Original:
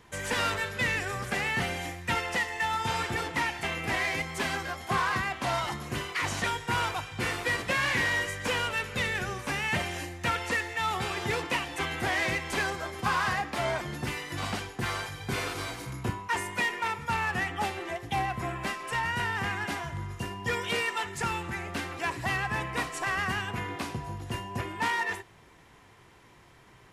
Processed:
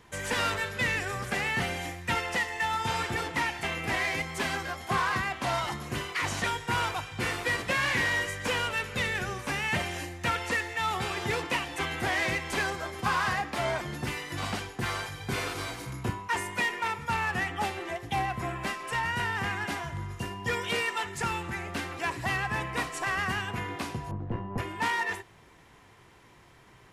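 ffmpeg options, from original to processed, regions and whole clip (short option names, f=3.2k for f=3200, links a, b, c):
-filter_complex "[0:a]asettb=1/sr,asplit=3[a][b][c];[a]atrim=end=24.114[d];[b]atrim=start=24.11:end=24.58,asetpts=PTS-STARTPTS,afade=t=in:d=0.004:c=qsin,afade=t=out:st=0.466:d=0.004:c=qsin,lowpass=1.3k,equalizer=f=190:w=0.45:g=8.5,aeval=exprs='(tanh(15.8*val(0)+0.55)-tanh(0.55))/15.8':c=same[e];[c]atrim=start=24.576[f];[d][e]acrossfade=d=0.004:c1=hsin:c2=qsin[g];[g][f]acrossfade=d=0.004:c1=qsin:c2=hsin"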